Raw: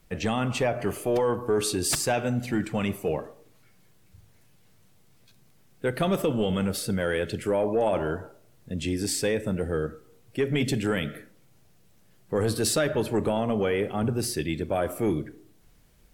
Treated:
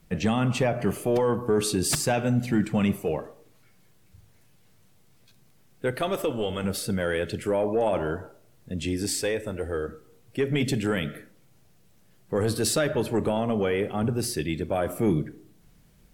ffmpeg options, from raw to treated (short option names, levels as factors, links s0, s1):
-af "asetnsamples=n=441:p=0,asendcmd='3.02 equalizer g 0;5.96 equalizer g -10.5;6.64 equalizer g 0;9.21 equalizer g -10.5;9.88 equalizer g 1;14.87 equalizer g 7',equalizer=f=170:t=o:w=1:g=7.5"